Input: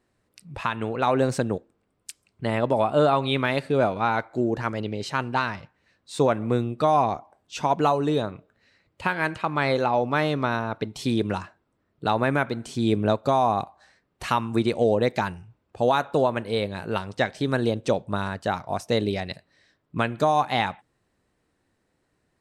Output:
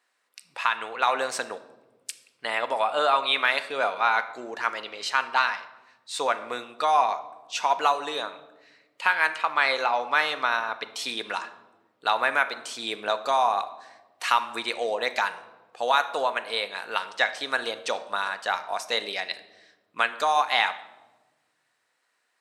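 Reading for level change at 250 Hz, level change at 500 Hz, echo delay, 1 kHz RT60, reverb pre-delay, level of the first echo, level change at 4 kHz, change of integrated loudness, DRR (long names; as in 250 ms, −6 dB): −18.0 dB, −6.5 dB, no echo audible, 1.0 s, 4 ms, no echo audible, +5.0 dB, −1.0 dB, 10.0 dB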